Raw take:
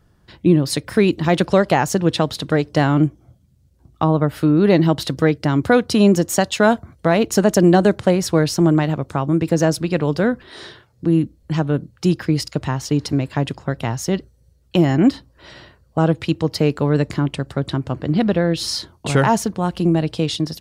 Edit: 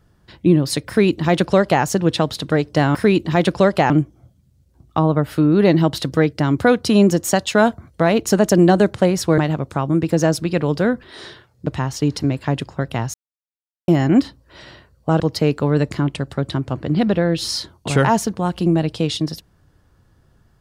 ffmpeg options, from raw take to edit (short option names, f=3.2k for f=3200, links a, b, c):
-filter_complex "[0:a]asplit=8[a][b][c][d][e][f][g][h];[a]atrim=end=2.952[i];[b]atrim=start=0.878:end=1.832[j];[c]atrim=start=2.948:end=8.432[k];[d]atrim=start=8.768:end=11.062[l];[e]atrim=start=12.558:end=14.03,asetpts=PTS-STARTPTS,afade=t=out:st=1.468:d=0.004:c=hsin[m];[f]atrim=start=14.03:end=14.77,asetpts=PTS-STARTPTS,volume=0[n];[g]atrim=start=14.77:end=16.092,asetpts=PTS-STARTPTS,afade=t=in:d=0.004:c=hsin[o];[h]atrim=start=16.388[p];[i][j]acrossfade=d=0.004:c1=hsin:c2=hsin[q];[q][k]acrossfade=d=0.004:c1=hsin:c2=hsin[r];[r][l]acrossfade=d=0.004:c1=hsin:c2=hsin[s];[m][n][o]concat=n=3:v=0:a=1[t];[s][t]acrossfade=d=0.004:c1=hsin:c2=hsin[u];[u][p]acrossfade=d=0.004:c1=hsin:c2=hsin"